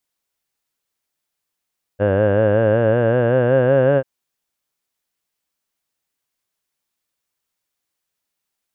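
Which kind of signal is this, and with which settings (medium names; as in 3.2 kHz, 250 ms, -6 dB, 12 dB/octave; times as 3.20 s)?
formant vowel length 2.04 s, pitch 98 Hz, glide +6 st, F1 540 Hz, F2 1.6 kHz, F3 2.8 kHz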